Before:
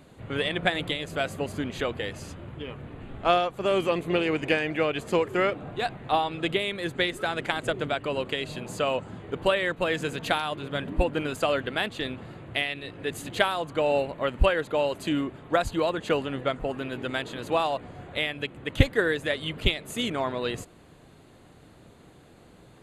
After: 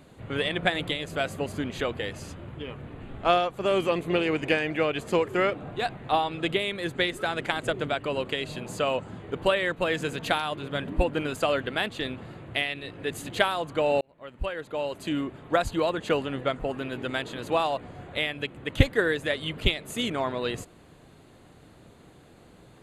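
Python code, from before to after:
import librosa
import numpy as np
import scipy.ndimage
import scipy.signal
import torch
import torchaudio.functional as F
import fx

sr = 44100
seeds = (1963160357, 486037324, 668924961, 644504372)

y = fx.edit(x, sr, fx.fade_in_span(start_s=14.01, length_s=1.43), tone=tone)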